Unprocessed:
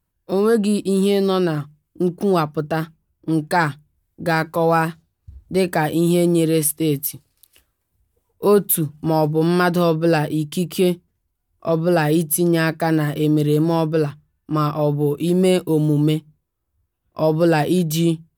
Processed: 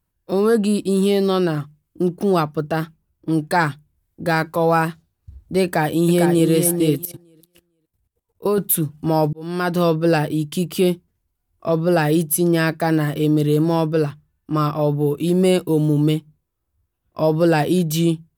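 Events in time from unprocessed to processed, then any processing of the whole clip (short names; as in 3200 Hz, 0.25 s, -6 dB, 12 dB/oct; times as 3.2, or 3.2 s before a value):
5.63–6.5 echo throw 0.45 s, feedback 15%, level -5.5 dB
7.05–8.58 level quantiser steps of 17 dB
9.33–9.84 fade in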